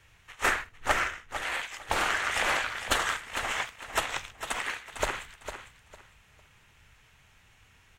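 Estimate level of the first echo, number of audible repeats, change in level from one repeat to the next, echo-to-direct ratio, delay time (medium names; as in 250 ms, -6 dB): -10.0 dB, 2, -13.0 dB, -10.0 dB, 453 ms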